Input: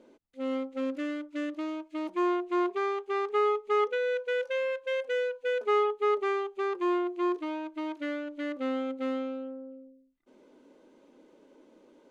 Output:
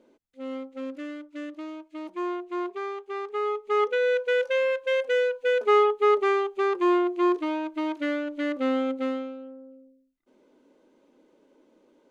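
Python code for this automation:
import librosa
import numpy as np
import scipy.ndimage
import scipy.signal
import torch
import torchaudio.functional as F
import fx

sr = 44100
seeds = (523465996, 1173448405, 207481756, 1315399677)

y = fx.gain(x, sr, db=fx.line((3.38, -3.0), (4.04, 6.0), (8.95, 6.0), (9.36, -3.0)))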